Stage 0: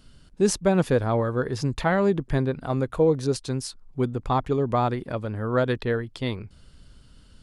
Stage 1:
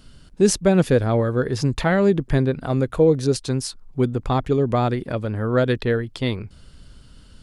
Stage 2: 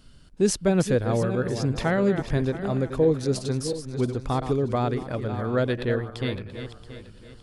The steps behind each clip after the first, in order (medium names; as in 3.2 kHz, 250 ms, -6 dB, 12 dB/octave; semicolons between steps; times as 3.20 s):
dynamic bell 980 Hz, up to -7 dB, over -39 dBFS, Q 1.6; trim +5 dB
backward echo that repeats 339 ms, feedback 51%, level -9 dB; trim -5 dB